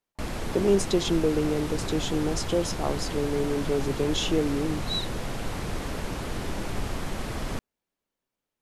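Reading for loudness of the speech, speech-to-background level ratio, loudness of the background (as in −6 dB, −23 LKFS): −27.5 LKFS, 6.0 dB, −33.5 LKFS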